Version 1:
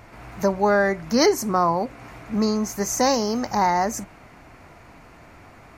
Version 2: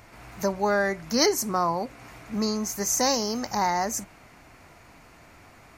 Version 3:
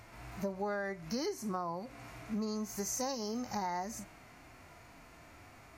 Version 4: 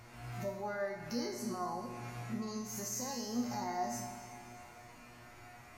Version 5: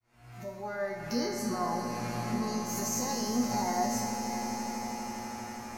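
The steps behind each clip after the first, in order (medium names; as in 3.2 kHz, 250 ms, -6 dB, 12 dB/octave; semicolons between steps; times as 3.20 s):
treble shelf 2.9 kHz +8.5 dB; trim -5.5 dB
harmonic-percussive split percussive -17 dB; compression 6:1, threshold -34 dBFS, peak gain reduction 14 dB
peak limiter -31 dBFS, peak gain reduction 8.5 dB; feedback comb 120 Hz, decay 0.52 s, harmonics all, mix 90%; on a send at -7 dB: reverberation RT60 2.6 s, pre-delay 46 ms; on the sum: trim +12 dB
fade-in on the opening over 1.13 s; on a send: echo with a slow build-up 81 ms, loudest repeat 8, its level -14.5 dB; on the sum: trim +6 dB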